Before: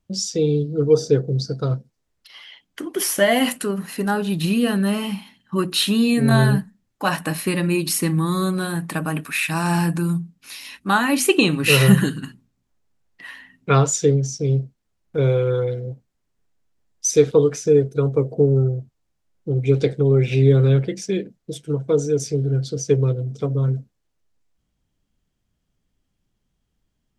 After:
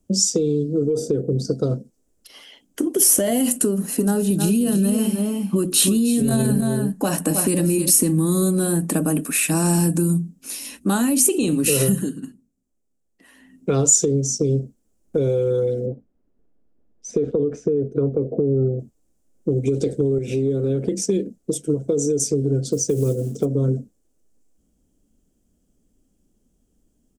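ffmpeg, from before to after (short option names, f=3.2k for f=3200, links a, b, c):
-filter_complex "[0:a]asettb=1/sr,asplit=3[a][b][c];[a]atrim=end=0.904[d];[b]atrim=start=0.9:end=1.45,asetpts=PTS-STARTPTS,afade=t=in:d=0.004:c=qsin,afade=t=out:st=0.546:d=0.004:c=qsin,equalizer=f=5.9k:w=1.4:g=-10.5[e];[c]atrim=start=1.446[f];[d][e]acrossfade=d=0.004:c1=hsin:c2=qsin[g];[g][f]acrossfade=d=0.004:c1=qsin:c2=hsin,asplit=3[h][i][j];[h]afade=t=out:st=3.99:d=0.02[k];[i]aecho=1:1:313:0.376,afade=t=in:st=3.99:d=0.02,afade=t=out:st=7.89:d=0.02[l];[j]afade=t=in:st=7.89:d=0.02[m];[k][l][m]amix=inputs=3:normalize=0,asettb=1/sr,asplit=3[n][o][p];[n]atrim=end=15.864[q];[o]atrim=start=15.86:end=18.79,asetpts=PTS-STARTPTS,afade=t=in:d=0.004:c=qsin,afade=t=out:st=2.926:d=0.004:c=qsin,lowpass=1.8k[r];[p]atrim=start=18.786[s];[q][r]acrossfade=d=0.004:c1=hsin:c2=qsin[t];[t][s]acrossfade=d=0.004:c1=qsin:c2=hsin,asettb=1/sr,asplit=3[u][v][w];[u]atrim=end=20.184[x];[v]atrim=start=20.18:end=21.04,asetpts=PTS-STARTPTS,afade=t=in:d=0.004:c=qsin,afade=t=out:st=0.856:d=0.004:c=qsin,acompressor=threshold=-25dB:ratio=3:attack=3.2:release=140:knee=1:detection=peak[y];[w]atrim=start=21.036[z];[x][y]acrossfade=d=0.004:c1=hsin:c2=qsin[aa];[aa][z]acrossfade=d=0.004:c1=qsin:c2=hsin,asplit=3[ab][ac][ad];[ab]afade=t=out:st=22.71:d=0.02[ae];[ac]acrusher=bits=8:mode=log:mix=0:aa=0.000001,afade=t=in:st=22.71:d=0.02,afade=t=out:st=23.44:d=0.02[af];[ad]afade=t=in:st=23.44:d=0.02[ag];[ae][af][ag]amix=inputs=3:normalize=0,asplit=3[ah][ai][aj];[ah]atrim=end=12.05,asetpts=PTS-STARTPTS,afade=t=out:st=11.65:d=0.4:silence=0.251189[ak];[ai]atrim=start=12.05:end=13.31,asetpts=PTS-STARTPTS,volume=-12dB[al];[aj]atrim=start=13.31,asetpts=PTS-STARTPTS,afade=t=in:d=0.4:silence=0.251189[am];[ak][al][am]concat=n=3:v=0:a=1,equalizer=f=125:t=o:w=1:g=-9,equalizer=f=250:t=o:w=1:g=8,equalizer=f=500:t=o:w=1:g=4,equalizer=f=1k:t=o:w=1:g=-8,equalizer=f=2k:t=o:w=1:g=-10,equalizer=f=4k:t=o:w=1:g=-10,equalizer=f=8k:t=o:w=1:g=7,alimiter=limit=-12dB:level=0:latency=1:release=36,acrossover=split=120|3000[an][ao][ap];[ao]acompressor=threshold=-26dB:ratio=6[aq];[an][aq][ap]amix=inputs=3:normalize=0,volume=7.5dB"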